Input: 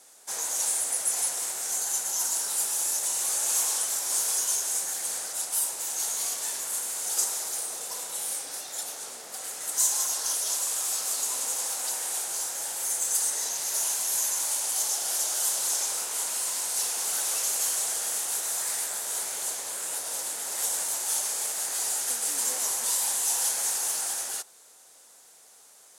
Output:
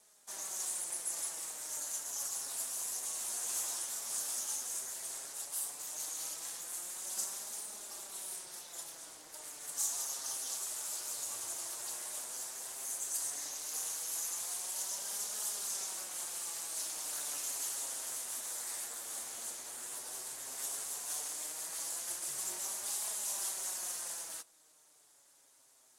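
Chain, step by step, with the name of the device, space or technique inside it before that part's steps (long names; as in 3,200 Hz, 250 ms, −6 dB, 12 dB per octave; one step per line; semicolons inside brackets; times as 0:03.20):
alien voice (ring modulation 150 Hz; flanger 0.13 Hz, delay 4.7 ms, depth 4.2 ms, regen +42%)
level −4 dB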